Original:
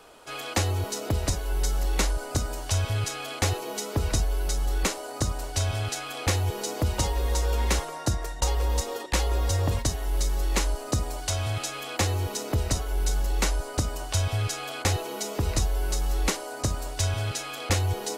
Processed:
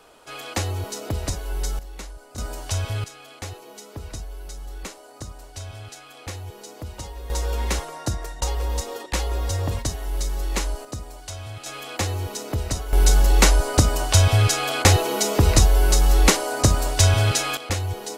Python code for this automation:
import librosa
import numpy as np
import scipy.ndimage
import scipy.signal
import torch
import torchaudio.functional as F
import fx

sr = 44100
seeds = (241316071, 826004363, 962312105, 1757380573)

y = fx.gain(x, sr, db=fx.steps((0.0, -0.5), (1.79, -12.5), (2.38, 0.0), (3.04, -9.5), (7.3, 0.0), (10.85, -7.0), (11.66, 0.0), (12.93, 10.0), (17.57, -1.0)))